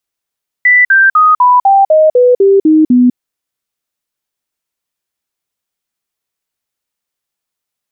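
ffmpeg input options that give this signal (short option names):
-f lavfi -i "aevalsrc='0.668*clip(min(mod(t,0.25),0.2-mod(t,0.25))/0.005,0,1)*sin(2*PI*1980*pow(2,-floor(t/0.25)/3)*mod(t,0.25))':d=2.5:s=44100"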